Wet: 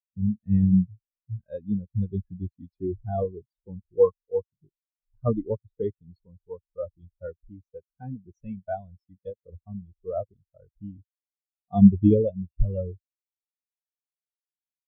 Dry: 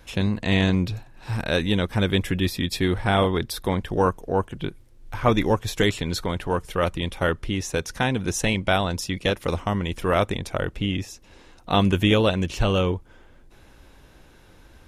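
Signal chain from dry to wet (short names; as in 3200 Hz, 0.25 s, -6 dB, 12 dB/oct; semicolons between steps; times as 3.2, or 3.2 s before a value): spectral expander 4:1; gain +2 dB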